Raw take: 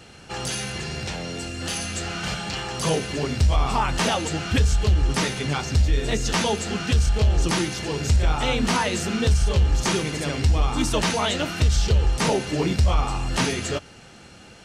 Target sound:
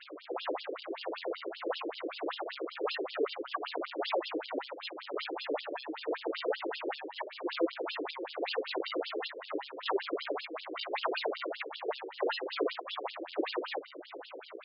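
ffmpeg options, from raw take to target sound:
ffmpeg -i in.wav -af "aeval=exprs='val(0)+0.5*0.0237*sgn(val(0))':channel_layout=same,bandreject=frequency=800:width=12,acompressor=threshold=-19dB:ratio=4,aresample=16000,acrusher=samples=13:mix=1:aa=0.000001:lfo=1:lforange=13:lforate=1.6,aresample=44100,aresample=11025,aresample=44100,afftfilt=real='re*between(b*sr/1024,380*pow(4000/380,0.5+0.5*sin(2*PI*5.2*pts/sr))/1.41,380*pow(4000/380,0.5+0.5*sin(2*PI*5.2*pts/sr))*1.41)':imag='im*between(b*sr/1024,380*pow(4000/380,0.5+0.5*sin(2*PI*5.2*pts/sr))/1.41,380*pow(4000/380,0.5+0.5*sin(2*PI*5.2*pts/sr))*1.41)':win_size=1024:overlap=0.75" out.wav

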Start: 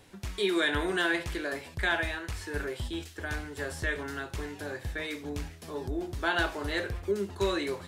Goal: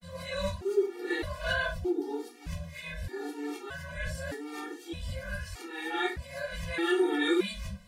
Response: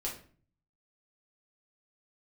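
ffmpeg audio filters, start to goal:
-filter_complex "[0:a]areverse[link_01];[1:a]atrim=start_sample=2205,afade=type=out:start_time=0.16:duration=0.01,atrim=end_sample=7497[link_02];[link_01][link_02]afir=irnorm=-1:irlink=0,afftfilt=real='re*gt(sin(2*PI*0.81*pts/sr)*(1-2*mod(floor(b*sr/1024/240),2)),0)':imag='im*gt(sin(2*PI*0.81*pts/sr)*(1-2*mod(floor(b*sr/1024/240),2)),0)':win_size=1024:overlap=0.75"

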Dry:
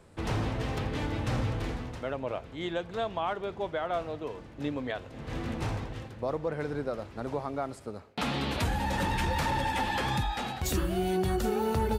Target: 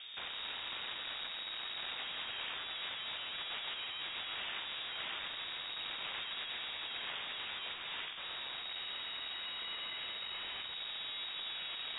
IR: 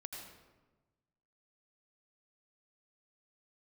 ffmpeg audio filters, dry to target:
-filter_complex "[0:a]dynaudnorm=framelen=520:gausssize=5:maxgain=7dB,aeval=exprs='(tanh(89.1*val(0)+0.6)-tanh(0.6))/89.1':channel_layout=same,aeval=exprs='(mod(237*val(0)+1,2)-1)/237':channel_layout=same,asplit=2[link_01][link_02];[1:a]atrim=start_sample=2205,lowshelf=frequency=220:gain=-9.5[link_03];[link_02][link_03]afir=irnorm=-1:irlink=0,volume=4dB[link_04];[link_01][link_04]amix=inputs=2:normalize=0,lowpass=frequency=3200:width_type=q:width=0.5098,lowpass=frequency=3200:width_type=q:width=0.6013,lowpass=frequency=3200:width_type=q:width=0.9,lowpass=frequency=3200:width_type=q:width=2.563,afreqshift=-3800,volume=6.5dB"

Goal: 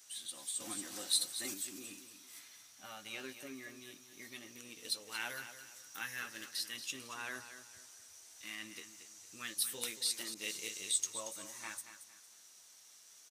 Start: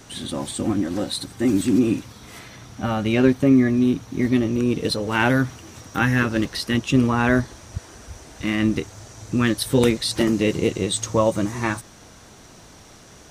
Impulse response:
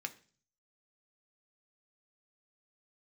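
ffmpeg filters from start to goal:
-filter_complex "[0:a]aderivative,aecho=1:1:229|458|687:0.282|0.0902|0.0289,asettb=1/sr,asplit=3[link_01][link_02][link_03];[link_01]atrim=end=0.604[link_04];[link_02]atrim=start=0.6:end=1.54,asetpts=PTS-STARTPTS,afade=type=in:duration=0.004:curve=qsin,afade=type=out:start_time=0.936:duration=0.004:curve=qsin,acontrast=80[link_05];[link_03]atrim=start=1.536[link_06];[link_04][link_05]acrossfade=duration=0.004:curve1=hsin:curve2=qsin[link_07];[link_07][link_06]acrossfade=duration=0.004:curve1=qsin:curve2=hsin,flanger=delay=9.5:depth=1:regen=-50:speed=0.19:shape=sinusoidal,asettb=1/sr,asplit=3[link_08][link_09][link_10];[link_08]atrim=end=10.344[link_11];[link_09]atrim=start=10.34:end=10.92,asetpts=PTS-STARTPTS,afade=type=in:duration=0.004:curve=qsin,afade=type=out:start_time=0.576:duration=0.004:curve=qsin,adynamicequalizer=threshold=0.00251:dfrequency=1700:dqfactor=0.7:tfrequency=1700:tqfactor=0.7:attack=5:release=100:ratio=0.375:range=2.5:mode=boostabove:tftype=highshelf[link_12];[link_10]atrim=start=10.916[link_13];[link_11][link_12]acrossfade=duration=0.004:curve1=hsin:curve2=qsin[link_14];[link_14][link_13]acrossfade=duration=0.004:curve1=qsin:curve2=hsin,volume=-3dB"

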